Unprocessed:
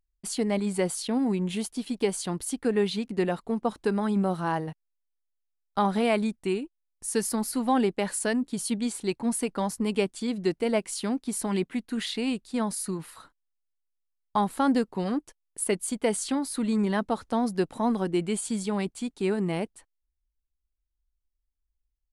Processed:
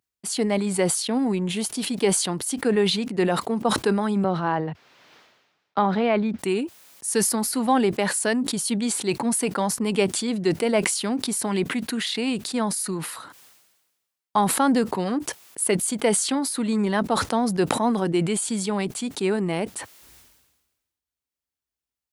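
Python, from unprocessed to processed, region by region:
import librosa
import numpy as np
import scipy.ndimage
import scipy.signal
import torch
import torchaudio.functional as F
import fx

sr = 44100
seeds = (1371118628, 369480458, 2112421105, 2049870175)

y = fx.chain(x, sr, fx.air_absorb(metres=240.0),
    fx.band_squash(depth_pct=40), at=(4.24, 6.39))
y = scipy.signal.sosfilt(scipy.signal.butter(4, 100.0, 'highpass', fs=sr, output='sos'), y)
y = fx.peak_eq(y, sr, hz=140.0, db=-3.5, octaves=2.7)
y = fx.sustainer(y, sr, db_per_s=48.0)
y = y * librosa.db_to_amplitude(5.0)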